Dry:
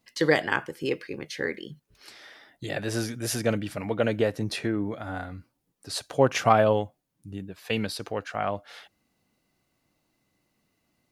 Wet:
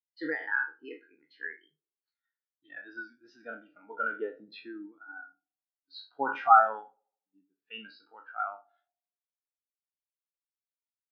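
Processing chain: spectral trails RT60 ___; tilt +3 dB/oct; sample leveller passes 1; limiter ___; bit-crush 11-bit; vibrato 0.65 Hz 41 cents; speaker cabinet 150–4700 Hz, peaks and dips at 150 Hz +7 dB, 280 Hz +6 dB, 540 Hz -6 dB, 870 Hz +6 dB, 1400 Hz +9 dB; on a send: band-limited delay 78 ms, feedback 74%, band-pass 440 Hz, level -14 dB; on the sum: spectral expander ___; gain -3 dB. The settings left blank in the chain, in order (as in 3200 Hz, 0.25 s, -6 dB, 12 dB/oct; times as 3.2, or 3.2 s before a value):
0.65 s, -8.5 dBFS, 2.5:1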